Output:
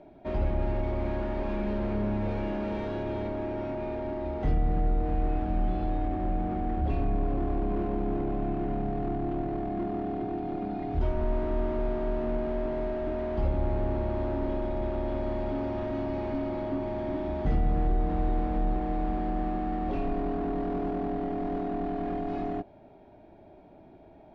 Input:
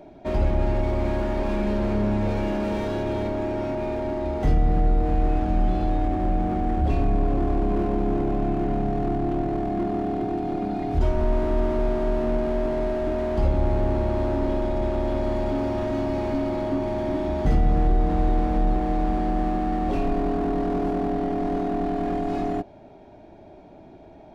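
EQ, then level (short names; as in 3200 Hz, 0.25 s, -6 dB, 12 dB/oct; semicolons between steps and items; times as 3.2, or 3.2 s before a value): LPF 3600 Hz 12 dB/oct; -6.0 dB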